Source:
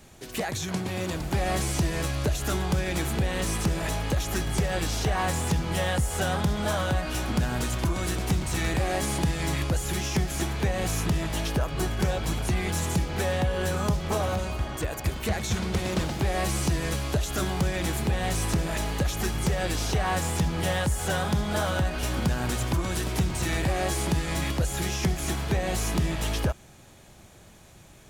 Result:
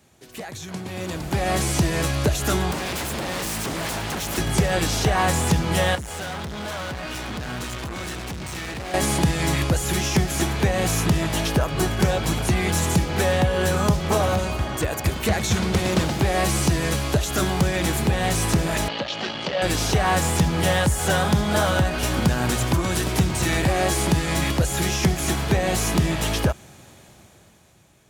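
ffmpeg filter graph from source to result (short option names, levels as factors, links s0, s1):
-filter_complex "[0:a]asettb=1/sr,asplit=3[s0][s1][s2];[s0]atrim=end=2.714[s3];[s1]atrim=start=2.71:end=4.38,asetpts=PTS-STARTPTS,afade=t=in:d=0.004:c=qsin,afade=t=out:st=1.666:d=0.004:c=qsin,bandreject=f=50:t=h:w=6,bandreject=f=100:t=h:w=6,bandreject=f=150:t=h:w=6,bandreject=f=200:t=h:w=6,bandreject=f=250:t=h:w=6,bandreject=f=300:t=h:w=6,bandreject=f=350:t=h:w=6,bandreject=f=400:t=h:w=6,bandreject=f=450:t=h:w=6,bandreject=f=500:t=h:w=6,aeval=exprs='0.0355*(abs(mod(val(0)/0.0355+3,4)-2)-1)':c=same[s4];[s2]atrim=start=4.376[s5];[s3][s4]acrossfade=d=0.004:c1=hsin:c2=qsin[s6];[s6][s5]acrossfade=d=0.004:c1=qsin:c2=hsin,asettb=1/sr,asplit=3[s7][s8][s9];[s7]atrim=end=5.954[s10];[s8]atrim=start=5.95:end=8.94,asetpts=PTS-STARTPTS,afade=t=in:d=0.004:c=qsin,afade=t=out:st=2.986:d=0.004:c=qsin,lowpass=f=2000:p=1,tiltshelf=f=1500:g=-5.5,asoftclip=type=hard:threshold=0.0168[s11];[s9]atrim=start=8.936[s12];[s10][s11]acrossfade=d=0.004:c1=hsin:c2=qsin[s13];[s13][s12]acrossfade=d=0.004:c1=qsin:c2=hsin,asettb=1/sr,asplit=3[s14][s15][s16];[s14]atrim=end=18.884[s17];[s15]atrim=start=18.88:end=19.62,asetpts=PTS-STARTPTS,afade=t=in:d=0.004:c=qsin,afade=t=out:st=0.736:d=0.004:c=qsin,aeval=exprs='(tanh(15.8*val(0)+0.45)-tanh(0.45))/15.8':c=same,highpass=250,equalizer=f=400:t=q:w=4:g=-6,equalizer=f=580:t=q:w=4:g=7,equalizer=f=3000:t=q:w=4:g=8,equalizer=f=4400:t=q:w=4:g=5,lowpass=f=4800:w=0.5412,lowpass=f=4800:w=1.3066[s18];[s16]atrim=start=19.616[s19];[s17][s18]acrossfade=d=0.004:c1=hsin:c2=qsin[s20];[s20][s19]acrossfade=d=0.004:c1=qsin:c2=hsin,highpass=69,dynaudnorm=f=220:g=11:m=5.31,volume=0.531"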